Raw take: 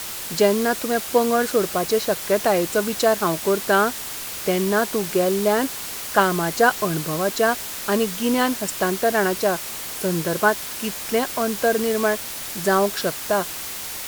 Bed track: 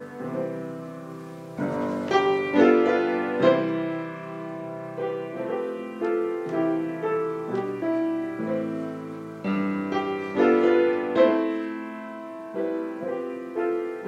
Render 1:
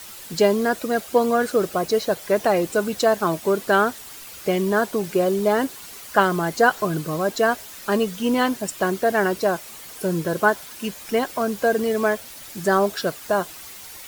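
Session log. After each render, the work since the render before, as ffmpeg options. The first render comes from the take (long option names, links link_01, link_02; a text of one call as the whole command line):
ffmpeg -i in.wav -af "afftdn=noise_reduction=10:noise_floor=-32" out.wav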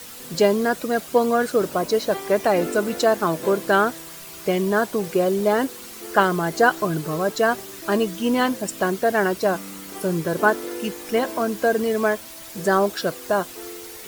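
ffmpeg -i in.wav -i bed.wav -filter_complex "[1:a]volume=-12.5dB[link_01];[0:a][link_01]amix=inputs=2:normalize=0" out.wav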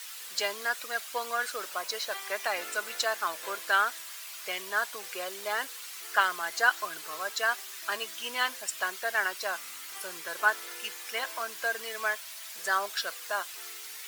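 ffmpeg -i in.wav -af "highpass=1500,highshelf=frequency=6000:gain=-4.5" out.wav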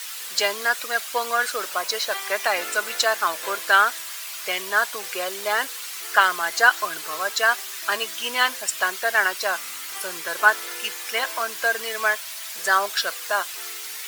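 ffmpeg -i in.wav -af "volume=8.5dB,alimiter=limit=-2dB:level=0:latency=1" out.wav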